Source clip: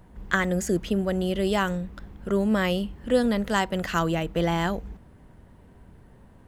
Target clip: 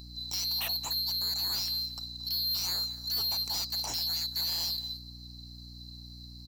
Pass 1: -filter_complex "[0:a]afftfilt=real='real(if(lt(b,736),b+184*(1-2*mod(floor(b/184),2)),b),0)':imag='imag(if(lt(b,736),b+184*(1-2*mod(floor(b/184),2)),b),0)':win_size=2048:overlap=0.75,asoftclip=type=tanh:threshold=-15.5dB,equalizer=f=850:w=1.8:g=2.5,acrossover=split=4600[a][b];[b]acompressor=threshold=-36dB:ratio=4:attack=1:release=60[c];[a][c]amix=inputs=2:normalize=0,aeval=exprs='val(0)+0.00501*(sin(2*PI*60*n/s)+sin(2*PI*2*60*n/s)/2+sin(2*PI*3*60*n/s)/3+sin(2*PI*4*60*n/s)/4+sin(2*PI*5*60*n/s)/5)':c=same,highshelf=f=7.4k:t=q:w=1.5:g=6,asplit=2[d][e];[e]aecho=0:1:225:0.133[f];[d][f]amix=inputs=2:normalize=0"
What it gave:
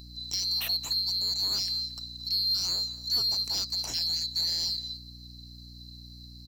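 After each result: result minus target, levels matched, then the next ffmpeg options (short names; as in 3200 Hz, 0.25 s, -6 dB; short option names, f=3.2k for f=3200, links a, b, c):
soft clip: distortion -10 dB; 1000 Hz band -6.5 dB
-filter_complex "[0:a]afftfilt=real='real(if(lt(b,736),b+184*(1-2*mod(floor(b/184),2)),b),0)':imag='imag(if(lt(b,736),b+184*(1-2*mod(floor(b/184),2)),b),0)':win_size=2048:overlap=0.75,asoftclip=type=tanh:threshold=-26dB,equalizer=f=850:w=1.8:g=2.5,acrossover=split=4600[a][b];[b]acompressor=threshold=-36dB:ratio=4:attack=1:release=60[c];[a][c]amix=inputs=2:normalize=0,aeval=exprs='val(0)+0.00501*(sin(2*PI*60*n/s)+sin(2*PI*2*60*n/s)/2+sin(2*PI*3*60*n/s)/3+sin(2*PI*4*60*n/s)/4+sin(2*PI*5*60*n/s)/5)':c=same,highshelf=f=7.4k:t=q:w=1.5:g=6,asplit=2[d][e];[e]aecho=0:1:225:0.133[f];[d][f]amix=inputs=2:normalize=0"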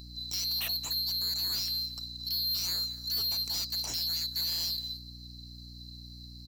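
1000 Hz band -6.5 dB
-filter_complex "[0:a]afftfilt=real='real(if(lt(b,736),b+184*(1-2*mod(floor(b/184),2)),b),0)':imag='imag(if(lt(b,736),b+184*(1-2*mod(floor(b/184),2)),b),0)':win_size=2048:overlap=0.75,asoftclip=type=tanh:threshold=-26dB,equalizer=f=850:w=1.8:g=11.5,acrossover=split=4600[a][b];[b]acompressor=threshold=-36dB:ratio=4:attack=1:release=60[c];[a][c]amix=inputs=2:normalize=0,aeval=exprs='val(0)+0.00501*(sin(2*PI*60*n/s)+sin(2*PI*2*60*n/s)/2+sin(2*PI*3*60*n/s)/3+sin(2*PI*4*60*n/s)/4+sin(2*PI*5*60*n/s)/5)':c=same,highshelf=f=7.4k:t=q:w=1.5:g=6,asplit=2[d][e];[e]aecho=0:1:225:0.133[f];[d][f]amix=inputs=2:normalize=0"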